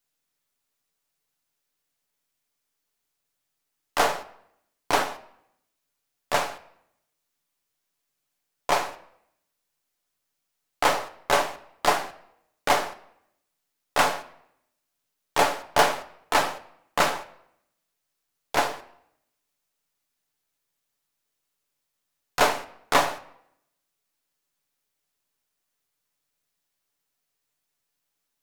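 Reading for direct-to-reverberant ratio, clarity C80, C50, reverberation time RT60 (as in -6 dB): 7.0 dB, 18.5 dB, 16.0 dB, 0.75 s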